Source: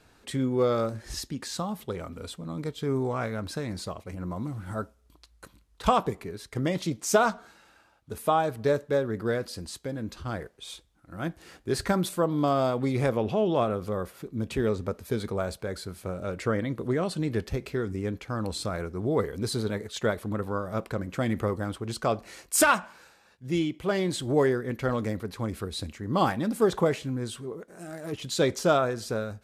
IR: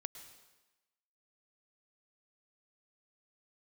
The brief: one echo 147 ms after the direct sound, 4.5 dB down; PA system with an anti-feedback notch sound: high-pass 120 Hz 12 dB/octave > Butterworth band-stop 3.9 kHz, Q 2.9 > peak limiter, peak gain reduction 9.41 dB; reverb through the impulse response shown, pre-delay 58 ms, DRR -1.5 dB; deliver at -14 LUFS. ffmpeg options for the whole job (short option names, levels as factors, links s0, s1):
-filter_complex "[0:a]aecho=1:1:147:0.596,asplit=2[s0][s1];[1:a]atrim=start_sample=2205,adelay=58[s2];[s1][s2]afir=irnorm=-1:irlink=0,volume=1.68[s3];[s0][s3]amix=inputs=2:normalize=0,highpass=120,asuperstop=centerf=3900:order=8:qfactor=2.9,volume=4.22,alimiter=limit=0.841:level=0:latency=1"